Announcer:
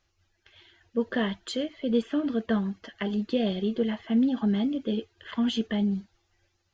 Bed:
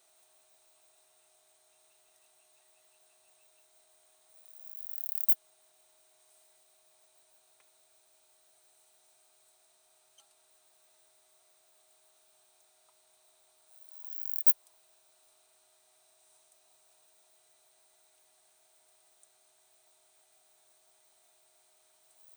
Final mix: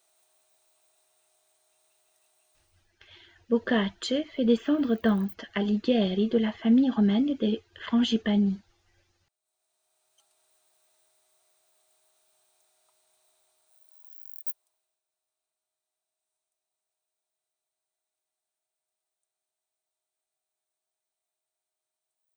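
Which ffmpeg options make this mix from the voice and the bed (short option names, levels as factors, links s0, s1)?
-filter_complex "[0:a]adelay=2550,volume=1.33[s0];[1:a]volume=7.08,afade=t=out:st=2.49:d=0.45:silence=0.105925,afade=t=in:st=9.41:d=1.01:silence=0.105925,afade=t=out:st=13.31:d=1.7:silence=0.105925[s1];[s0][s1]amix=inputs=2:normalize=0"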